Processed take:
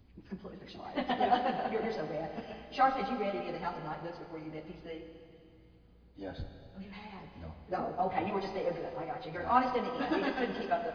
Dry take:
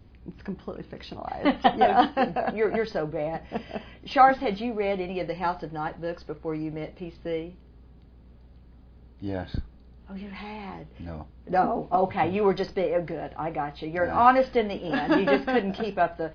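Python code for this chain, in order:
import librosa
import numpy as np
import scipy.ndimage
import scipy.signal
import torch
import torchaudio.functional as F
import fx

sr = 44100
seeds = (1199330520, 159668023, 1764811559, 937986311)

y = fx.high_shelf(x, sr, hz=3900.0, db=6.0)
y = fx.stretch_vocoder_free(y, sr, factor=0.67)
y = fx.rev_schroeder(y, sr, rt60_s=2.6, comb_ms=25, drr_db=6.0)
y = y * 10.0 ** (-6.5 / 20.0)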